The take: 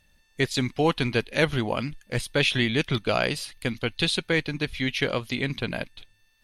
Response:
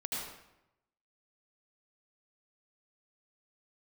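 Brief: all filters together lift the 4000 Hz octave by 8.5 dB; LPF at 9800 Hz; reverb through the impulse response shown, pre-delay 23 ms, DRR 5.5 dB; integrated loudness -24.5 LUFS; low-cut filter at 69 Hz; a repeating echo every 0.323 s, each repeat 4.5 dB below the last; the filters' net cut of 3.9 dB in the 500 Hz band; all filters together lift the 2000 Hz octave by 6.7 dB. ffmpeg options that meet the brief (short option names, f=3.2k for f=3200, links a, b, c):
-filter_complex "[0:a]highpass=69,lowpass=9.8k,equalizer=f=500:t=o:g=-5,equalizer=f=2k:t=o:g=6,equalizer=f=4k:t=o:g=8.5,aecho=1:1:323|646|969|1292|1615|1938|2261|2584|2907:0.596|0.357|0.214|0.129|0.0772|0.0463|0.0278|0.0167|0.01,asplit=2[a][b];[1:a]atrim=start_sample=2205,adelay=23[c];[b][c]afir=irnorm=-1:irlink=0,volume=-8.5dB[d];[a][d]amix=inputs=2:normalize=0,volume=-6dB"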